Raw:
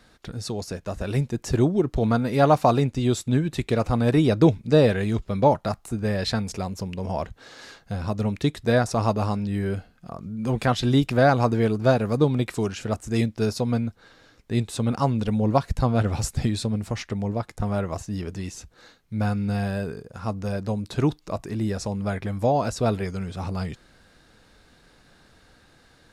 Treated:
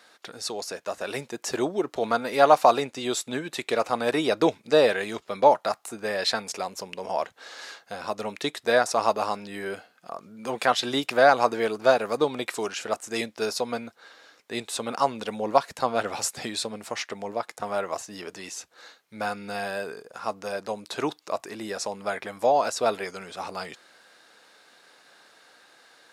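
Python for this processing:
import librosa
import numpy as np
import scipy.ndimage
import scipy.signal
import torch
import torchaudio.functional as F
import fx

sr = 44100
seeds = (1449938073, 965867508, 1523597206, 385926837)

y = scipy.signal.sosfilt(scipy.signal.butter(2, 540.0, 'highpass', fs=sr, output='sos'), x)
y = y * 10.0 ** (3.5 / 20.0)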